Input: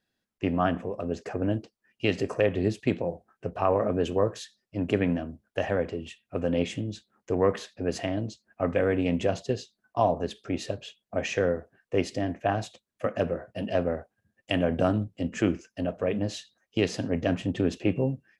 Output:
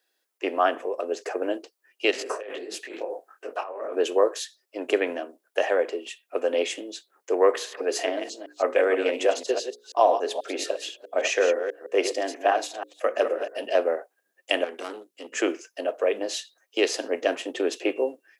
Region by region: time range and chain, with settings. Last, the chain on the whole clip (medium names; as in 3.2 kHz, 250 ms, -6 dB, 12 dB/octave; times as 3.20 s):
2.11–3.97 s: peaking EQ 1.4 kHz +4 dB 0.57 oct + compressor with a negative ratio -32 dBFS + detune thickener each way 56 cents
7.49–13.57 s: chunks repeated in reverse 162 ms, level -8 dB + hum notches 60/120/180/240/300/360/420/480/540 Hz
14.64–15.32 s: peaking EQ 630 Hz -12 dB 1.6 oct + valve stage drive 29 dB, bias 0.45
whole clip: steep high-pass 350 Hz 36 dB/octave; treble shelf 8.1 kHz +10 dB; trim +5 dB